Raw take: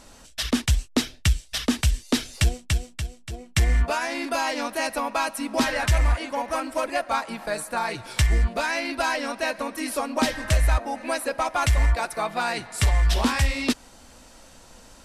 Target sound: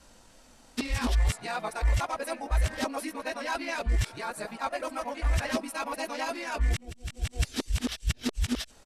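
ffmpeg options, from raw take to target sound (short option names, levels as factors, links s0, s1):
-af "areverse,adynamicequalizer=threshold=0.00562:dfrequency=420:dqfactor=4.1:tfrequency=420:tqfactor=4.1:attack=5:release=100:ratio=0.375:range=1.5:mode=boostabove:tftype=bell,flanger=delay=18.5:depth=2.7:speed=0.39,atempo=1.7,volume=0.668"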